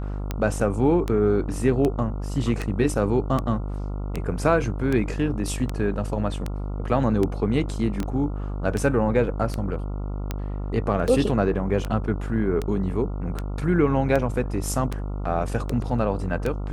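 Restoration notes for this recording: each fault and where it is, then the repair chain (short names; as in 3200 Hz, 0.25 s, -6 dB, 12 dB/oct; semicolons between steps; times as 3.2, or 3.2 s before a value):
buzz 50 Hz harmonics 28 -29 dBFS
tick 78 rpm -13 dBFS
8.03 pop -17 dBFS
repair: de-click; de-hum 50 Hz, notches 28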